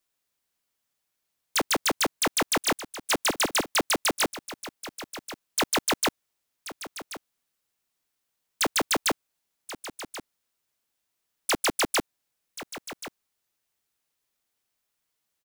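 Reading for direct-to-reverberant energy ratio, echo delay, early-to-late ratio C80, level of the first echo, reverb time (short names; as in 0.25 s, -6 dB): none, 1.082 s, none, -14.0 dB, none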